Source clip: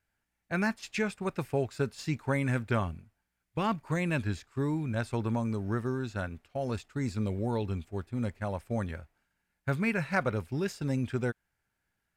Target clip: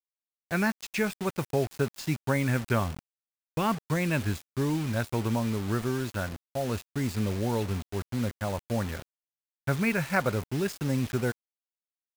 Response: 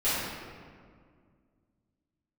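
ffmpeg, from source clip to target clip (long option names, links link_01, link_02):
-af "acrusher=bits=6:mix=0:aa=0.000001,volume=2.5dB"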